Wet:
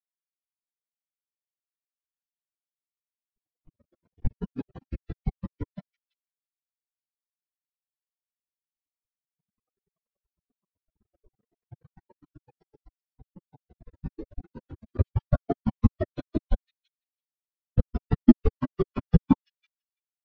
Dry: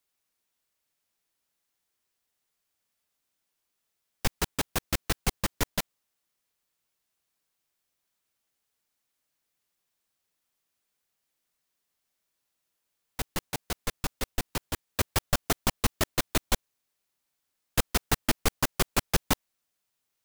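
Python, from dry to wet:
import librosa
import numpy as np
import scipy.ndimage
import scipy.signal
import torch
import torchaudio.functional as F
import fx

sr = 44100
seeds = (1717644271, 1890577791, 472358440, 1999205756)

p1 = fx.wiener(x, sr, points=25)
p2 = scipy.signal.sosfilt(scipy.signal.butter(2, 6200.0, 'lowpass', fs=sr, output='sos'), p1)
p3 = fx.low_shelf(p2, sr, hz=62.0, db=-10.0)
p4 = p3 + fx.echo_wet_highpass(p3, sr, ms=332, feedback_pct=47, hz=2000.0, wet_db=-3.5, dry=0)
p5 = fx.echo_pitch(p4, sr, ms=489, semitones=5, count=2, db_per_echo=-6.0)
p6 = fx.spectral_expand(p5, sr, expansion=4.0)
y = p6 * 10.0 ** (8.5 / 20.0)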